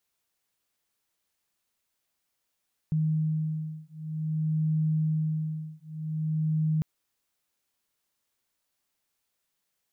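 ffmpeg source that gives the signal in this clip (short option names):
-f lavfi -i "aevalsrc='0.0376*(sin(2*PI*156*t)+sin(2*PI*156.52*t))':d=3.9:s=44100"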